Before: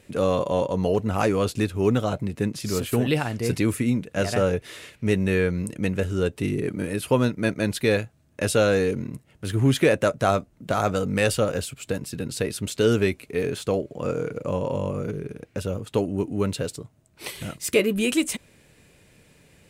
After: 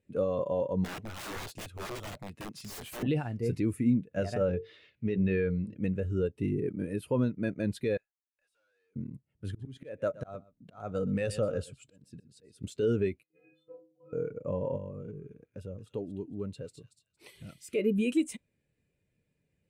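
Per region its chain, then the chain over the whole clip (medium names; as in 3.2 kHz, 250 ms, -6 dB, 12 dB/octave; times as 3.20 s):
0.84–3.03 s: tilt shelf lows -4.5 dB, about 830 Hz + integer overflow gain 23 dB + de-esser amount 25%
4.46–5.83 s: resonant high shelf 6.2 kHz -10 dB, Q 1.5 + hum notches 50/100/150/200/250/300/350/400/450/500 Hz
7.97–8.96 s: high-pass 1.1 kHz + valve stage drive 42 dB, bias 0.3 + compression 16:1, threshold -53 dBFS
9.47–12.64 s: low-pass 12 kHz + slow attack 355 ms + delay 122 ms -14 dB
13.23–14.13 s: tone controls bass -4 dB, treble -13 dB + inharmonic resonator 150 Hz, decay 0.78 s, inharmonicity 0.03
14.77–17.75 s: compression 1.5:1, threshold -35 dBFS + feedback echo behind a high-pass 229 ms, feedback 35%, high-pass 2.2 kHz, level -4.5 dB
whole clip: peak limiter -15 dBFS; spectral contrast expander 1.5:1; trim -2 dB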